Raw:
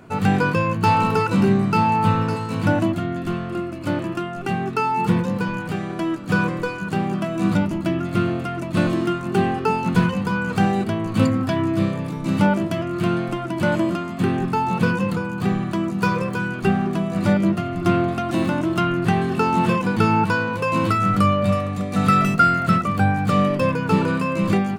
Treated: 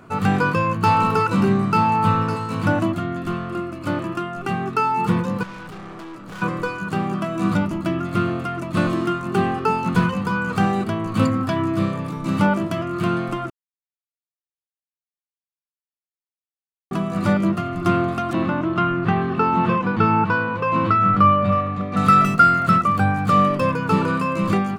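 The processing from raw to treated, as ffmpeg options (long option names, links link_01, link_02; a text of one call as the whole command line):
ffmpeg -i in.wav -filter_complex "[0:a]asettb=1/sr,asplit=3[link_01][link_02][link_03];[link_01]atrim=end=5.434[link_04];[link_02]atrim=start=5.43:end=6.42,asetpts=PTS-STARTPTS,afade=type=in:duration=0.004:curve=qsin,afade=type=out:start_time=0.986:duration=0.004:curve=qsin,aeval=exprs='(tanh(50.1*val(0)+0.35)-tanh(0.35))/50.1':channel_layout=same[link_05];[link_03]atrim=start=6.416[link_06];[link_04][link_05]acrossfade=duration=0.004:curve1=hsin:curve2=qsin[link_07];[link_07][link_06]acrossfade=duration=0.004:curve1=qsin:curve2=hsin,asettb=1/sr,asplit=3[link_08][link_09][link_10];[link_08]atrim=end=18.334[link_11];[link_09]atrim=start=18.33:end=21.97,asetpts=PTS-STARTPTS,afade=type=in:duration=0.004:curve=qsin,afade=type=out:start_time=3.636:duration=0.004:curve=qsin,lowpass=3000[link_12];[link_10]atrim=start=21.966[link_13];[link_11][link_12]acrossfade=duration=0.004:curve1=hsin:curve2=qsin[link_14];[link_14][link_13]acrossfade=duration=0.004:curve1=qsin:curve2=hsin,asplit=3[link_15][link_16][link_17];[link_15]atrim=end=13.5,asetpts=PTS-STARTPTS,afade=type=out:start_time=13.496:duration=0.004:curve=hsin[link_18];[link_16]atrim=start=13.5:end=16.91,asetpts=PTS-STARTPTS,volume=0[link_19];[link_17]atrim=start=16.91,asetpts=PTS-STARTPTS,afade=type=in:duration=0.004:curve=hsin[link_20];[link_18][link_19][link_20]concat=n=3:v=0:a=1,equalizer=frequency=1200:width_type=o:width=0.38:gain=8,volume=-1dB" out.wav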